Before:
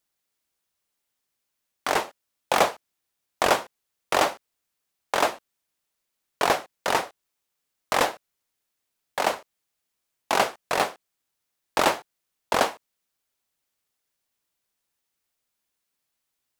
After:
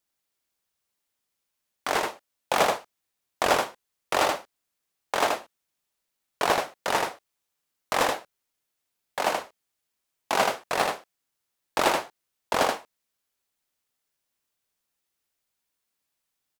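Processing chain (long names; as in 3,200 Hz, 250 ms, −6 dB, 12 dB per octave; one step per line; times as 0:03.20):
single-tap delay 79 ms −3.5 dB
level −2.5 dB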